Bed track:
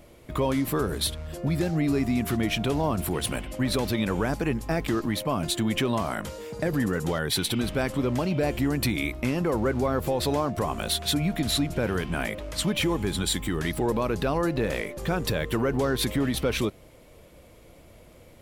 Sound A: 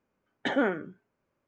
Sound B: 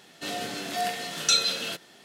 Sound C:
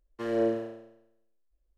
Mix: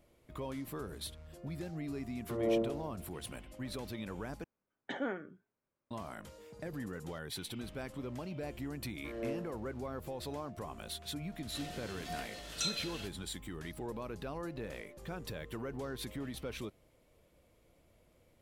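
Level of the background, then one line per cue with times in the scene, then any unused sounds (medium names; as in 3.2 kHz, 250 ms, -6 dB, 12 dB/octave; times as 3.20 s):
bed track -16 dB
2.10 s: add C -4.5 dB + Savitzky-Golay filter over 65 samples
4.44 s: replace with A -11 dB
8.85 s: add C -13 dB
11.32 s: add B -14 dB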